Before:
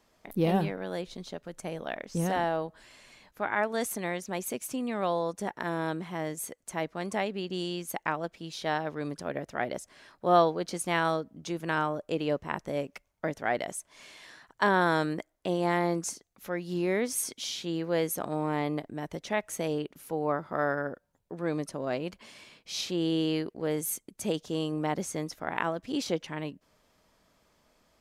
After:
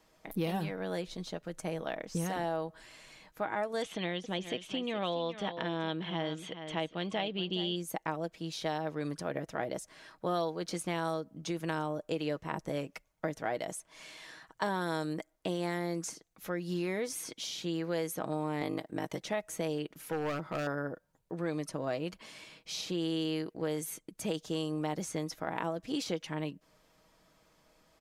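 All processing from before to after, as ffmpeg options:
-filter_complex "[0:a]asettb=1/sr,asplit=3[s0][s1][s2];[s0]atrim=end=3.824[s3];[s1]atrim=start=3.82:end=7.76,asetpts=PTS-STARTPTS,afade=t=in:d=0.004:c=qsin,afade=t=out:st=3.936:d=0.004:c=qsin,lowpass=f=3200:t=q:w=6.6,aecho=1:1:418:0.211,atrim=end_sample=173754[s4];[s2]atrim=start=7.756[s5];[s3][s4]acrossfade=d=0.004:c1=hsin:c2=qsin[s6];[s6][s5]acrossfade=d=0.004:c1=qsin:c2=hsin,asettb=1/sr,asplit=3[s7][s8][s9];[s7]atrim=end=18.614[s10];[s8]atrim=start=18.61:end=19.22,asetpts=PTS-STARTPTS,afade=t=in:d=0.004:c=qsin,afade=t=out:st=0.606:d=0.004:c=qsin,highpass=f=210:p=1,acontrast=51,aeval=exprs='val(0)*sin(2*PI*26*n/s)':c=same[s11];[s9]atrim=start=19.216[s12];[s10][s11]acrossfade=d=0.004:c1=hsin:c2=qsin[s13];[s13][s12]acrossfade=d=0.004:c1=qsin:c2=hsin,asettb=1/sr,asplit=3[s14][s15][s16];[s14]atrim=end=20.004[s17];[s15]atrim=start=20:end=20.67,asetpts=PTS-STARTPTS,afade=t=in:d=0.004:c=qsin,afade=t=out:st=0.666:d=0.004:c=qsin,asoftclip=type=hard:threshold=0.0355,equalizer=f=2000:t=o:w=1.8:g=5[s18];[s16]atrim=start=20.666[s19];[s17][s18]acrossfade=d=0.004:c1=hsin:c2=qsin[s20];[s20][s19]acrossfade=d=0.004:c1=qsin:c2=hsin,aecho=1:1:6.3:0.39,acrossover=split=980|4400[s21][s22][s23];[s21]acompressor=threshold=0.0251:ratio=4[s24];[s22]acompressor=threshold=0.00794:ratio=4[s25];[s23]acompressor=threshold=0.00794:ratio=4[s26];[s24][s25][s26]amix=inputs=3:normalize=0"

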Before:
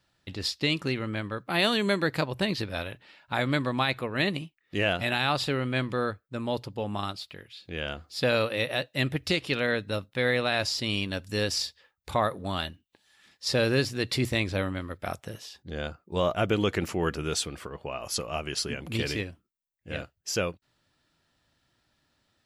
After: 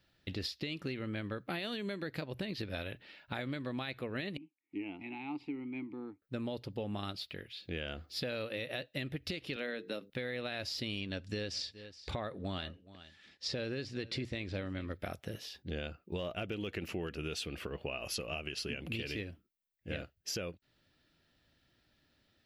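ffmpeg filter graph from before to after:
-filter_complex "[0:a]asettb=1/sr,asplit=3[s0][s1][s2];[s0]atrim=end=4.374[s3];[s1]atrim=start=4.37:end=6.22,asetpts=PTS-STARTPTS,afade=t=in:d=0.004:c=qsin,afade=t=out:st=1.846:d=0.004:c=qsin,asplit=3[s4][s5][s6];[s4]bandpass=f=300:t=q:w=8,volume=1[s7];[s5]bandpass=f=870:t=q:w=8,volume=0.501[s8];[s6]bandpass=f=2240:t=q:w=8,volume=0.355[s9];[s7][s8][s9]amix=inputs=3:normalize=0,equalizer=f=3600:t=o:w=0.47:g=-10[s10];[s2]atrim=start=6.216[s11];[s3][s10]acrossfade=d=0.004:c1=hsin:c2=qsin[s12];[s12][s11]acrossfade=d=0.004:c1=qsin:c2=hsin,asettb=1/sr,asplit=3[s13][s14][s15];[s13]atrim=end=9.564[s16];[s14]atrim=start=9.56:end=10.1,asetpts=PTS-STARTPTS,afade=t=in:d=0.004:c=qsin,afade=t=out:st=0.536:d=0.004:c=qsin,highpass=f=190:w=0.5412,highpass=f=190:w=1.3066,bandreject=f=50:t=h:w=6,bandreject=f=100:t=h:w=6,bandreject=f=150:t=h:w=6,bandreject=f=200:t=h:w=6,bandreject=f=250:t=h:w=6,bandreject=f=300:t=h:w=6,bandreject=f=350:t=h:w=6,bandreject=f=400:t=h:w=6,bandreject=f=450:t=h:w=6,bandreject=f=500:t=h:w=6[s17];[s15]atrim=start=10.096[s18];[s16][s17]acrossfade=d=0.004:c1=hsin:c2=qsin[s19];[s19][s18]acrossfade=d=0.004:c1=qsin:c2=hsin,asettb=1/sr,asplit=3[s20][s21][s22];[s20]atrim=end=11.004[s23];[s21]atrim=start=11:end=14.93,asetpts=PTS-STARTPTS,afade=t=in:d=0.004:c=qsin,afade=t=out:st=3.926:d=0.004:c=qsin,lowpass=f=8100:w=0.5412,lowpass=f=8100:w=1.3066,aecho=1:1:420:0.0708,atrim=end_sample=173313[s24];[s22]atrim=start=14.926[s25];[s23][s24]acrossfade=d=0.004:c1=hsin:c2=qsin[s26];[s26][s25]acrossfade=d=0.004:c1=qsin:c2=hsin,asettb=1/sr,asplit=3[s27][s28][s29];[s27]atrim=end=15.644[s30];[s28]atrim=start=15.64:end=19.16,asetpts=PTS-STARTPTS,afade=t=in:d=0.004:c=qsin,afade=t=out:st=3.516:d=0.004:c=qsin,equalizer=f=2700:w=5.3:g=9,asoftclip=type=hard:threshold=0.2[s31];[s29]atrim=start=19.156[s32];[s30][s31]acrossfade=d=0.004:c1=hsin:c2=qsin[s33];[s33][s32]acrossfade=d=0.004:c1=qsin:c2=hsin,equalizer=f=125:t=o:w=1:g=-3,equalizer=f=1000:t=o:w=1:g=-9,equalizer=f=8000:t=o:w=1:g=-11,alimiter=limit=0.0708:level=0:latency=1:release=413,acompressor=threshold=0.0141:ratio=6,volume=1.26"

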